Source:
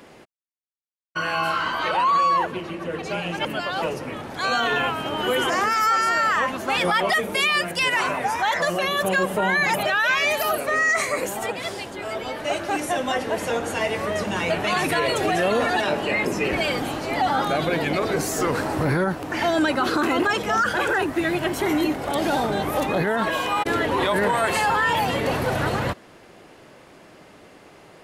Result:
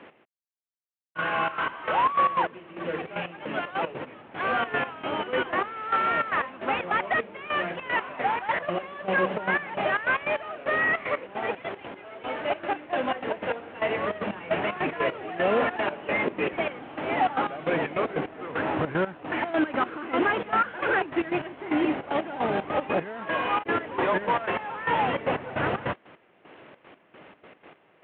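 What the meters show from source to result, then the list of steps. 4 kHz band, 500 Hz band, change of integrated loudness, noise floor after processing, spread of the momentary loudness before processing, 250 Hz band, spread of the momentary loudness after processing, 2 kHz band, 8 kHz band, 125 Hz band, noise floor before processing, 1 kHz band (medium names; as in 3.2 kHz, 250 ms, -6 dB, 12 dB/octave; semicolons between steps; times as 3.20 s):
-11.5 dB, -4.5 dB, -5.0 dB, -61 dBFS, 8 LU, -5.0 dB, 8 LU, -5.5 dB, under -40 dB, -8.5 dB, -49 dBFS, -4.5 dB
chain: CVSD coder 16 kbps; high-pass 210 Hz 6 dB/octave; trance gate "x..xx.x.x...xxx." 152 bpm -12 dB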